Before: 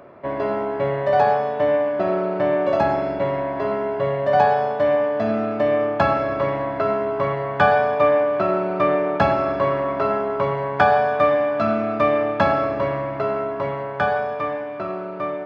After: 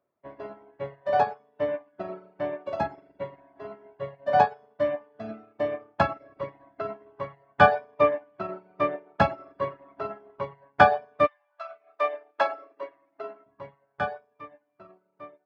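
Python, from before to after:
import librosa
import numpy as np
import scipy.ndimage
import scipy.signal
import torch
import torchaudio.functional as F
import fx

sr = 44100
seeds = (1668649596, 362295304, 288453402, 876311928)

y = fx.highpass(x, sr, hz=fx.line((11.26, 790.0), (13.45, 230.0)), slope=24, at=(11.26, 13.45), fade=0.02)
y = fx.dereverb_blind(y, sr, rt60_s=1.2)
y = fx.upward_expand(y, sr, threshold_db=-37.0, expansion=2.5)
y = y * 10.0 ** (2.0 / 20.0)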